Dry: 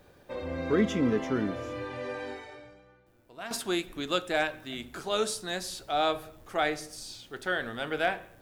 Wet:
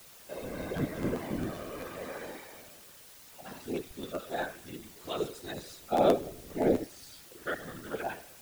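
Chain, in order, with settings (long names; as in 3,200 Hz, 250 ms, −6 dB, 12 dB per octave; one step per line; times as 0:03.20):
harmonic-percussive split with one part muted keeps harmonic
0:05.92–0:06.84: low shelf with overshoot 670 Hz +11.5 dB, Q 1.5
in parallel at −11.5 dB: bit-depth reduction 6 bits, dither triangular
on the sum: random phases in short frames
regular buffer underruns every 0.13 s, samples 512, repeat, from 0:00.63
level −6 dB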